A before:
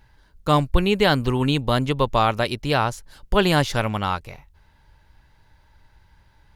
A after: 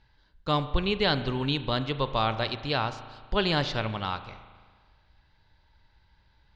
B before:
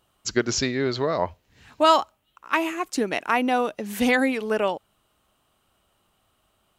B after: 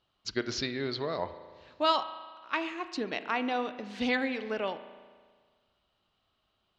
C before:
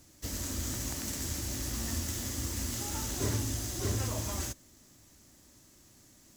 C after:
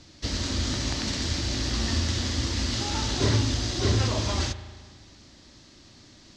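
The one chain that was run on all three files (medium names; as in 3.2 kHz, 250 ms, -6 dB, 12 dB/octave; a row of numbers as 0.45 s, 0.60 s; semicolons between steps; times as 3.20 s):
four-pole ladder low-pass 5.1 kHz, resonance 45%; spring tank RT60 1.6 s, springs 36 ms, chirp 35 ms, DRR 11 dB; peak normalisation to -12 dBFS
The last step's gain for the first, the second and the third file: +1.0 dB, -1.0 dB, +17.5 dB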